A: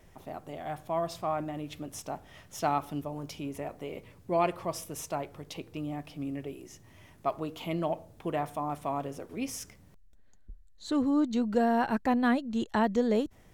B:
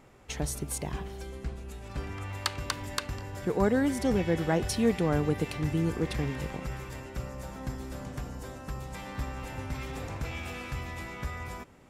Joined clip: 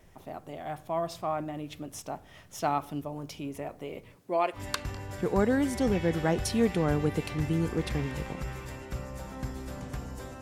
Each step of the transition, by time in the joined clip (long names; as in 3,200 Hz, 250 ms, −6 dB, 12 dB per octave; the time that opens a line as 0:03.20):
A
0:04.15–0:04.62: high-pass filter 170 Hz → 650 Hz
0:04.57: continue with B from 0:02.81, crossfade 0.10 s